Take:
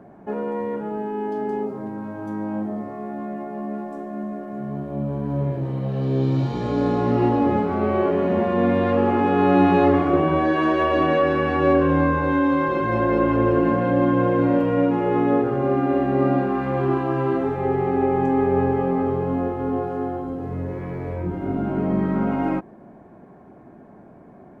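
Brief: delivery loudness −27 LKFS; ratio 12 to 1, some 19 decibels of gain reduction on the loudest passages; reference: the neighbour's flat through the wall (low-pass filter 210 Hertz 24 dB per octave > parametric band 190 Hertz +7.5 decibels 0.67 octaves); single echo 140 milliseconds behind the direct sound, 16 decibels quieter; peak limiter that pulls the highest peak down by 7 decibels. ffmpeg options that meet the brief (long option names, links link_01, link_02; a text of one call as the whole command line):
ffmpeg -i in.wav -af "acompressor=threshold=-32dB:ratio=12,alimiter=level_in=7dB:limit=-24dB:level=0:latency=1,volume=-7dB,lowpass=frequency=210:width=0.5412,lowpass=frequency=210:width=1.3066,equalizer=frequency=190:width_type=o:width=0.67:gain=7.5,aecho=1:1:140:0.158,volume=15dB" out.wav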